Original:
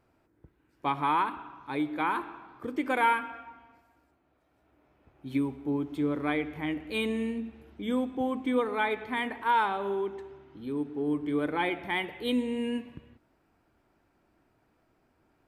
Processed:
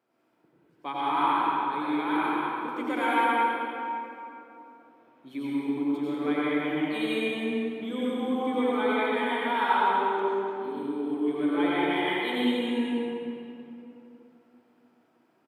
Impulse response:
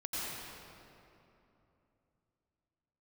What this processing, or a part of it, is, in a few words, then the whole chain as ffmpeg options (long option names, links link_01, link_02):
PA in a hall: -filter_complex "[0:a]highpass=180,equalizer=frequency=3300:width_type=o:width=0.25:gain=4,aecho=1:1:190:0.335[link_01];[1:a]atrim=start_sample=2205[link_02];[link_01][link_02]afir=irnorm=-1:irlink=0,highpass=160,volume=-1.5dB"